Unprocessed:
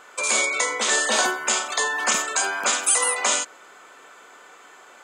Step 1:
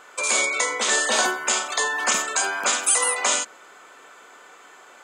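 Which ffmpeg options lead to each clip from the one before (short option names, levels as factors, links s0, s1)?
-af "bandreject=f=73.15:t=h:w=4,bandreject=f=146.3:t=h:w=4,bandreject=f=219.45:t=h:w=4"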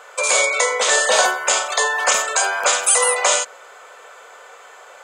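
-af "lowshelf=f=390:t=q:w=3:g=-8.5,volume=1.58"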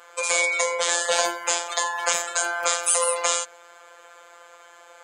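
-af "afftfilt=real='hypot(re,im)*cos(PI*b)':imag='0':win_size=1024:overlap=0.75,volume=0.75"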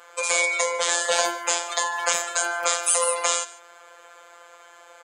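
-af "aecho=1:1:148:0.1"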